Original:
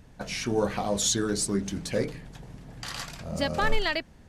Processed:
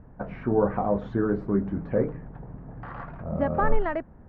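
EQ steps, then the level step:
low-pass filter 1,400 Hz 24 dB per octave
+3.5 dB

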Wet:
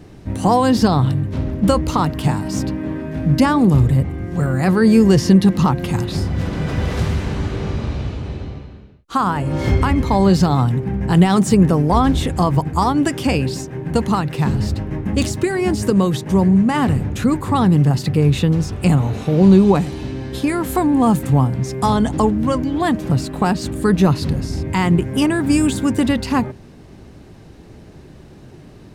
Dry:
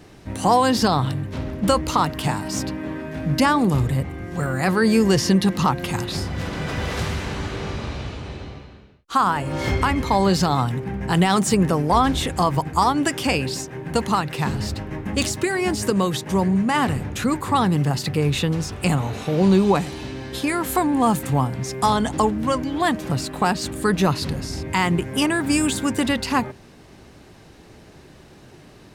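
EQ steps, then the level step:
low-shelf EQ 480 Hz +10 dB
−2.0 dB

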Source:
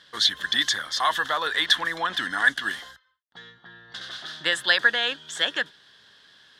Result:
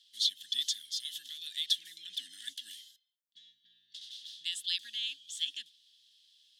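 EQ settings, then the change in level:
Chebyshev band-stop filter 260–2,800 Hz, order 3
first difference
high-shelf EQ 5,200 Hz −7 dB
0.0 dB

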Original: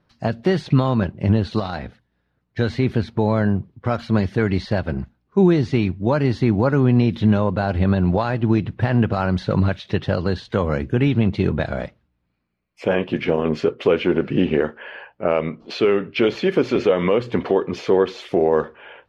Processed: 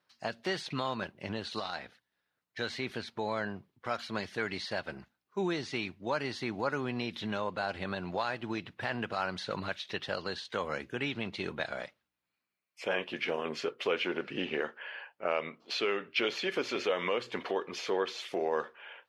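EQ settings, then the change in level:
high-pass filter 1,300 Hz 6 dB per octave
high-shelf EQ 4,800 Hz +6 dB
−5.0 dB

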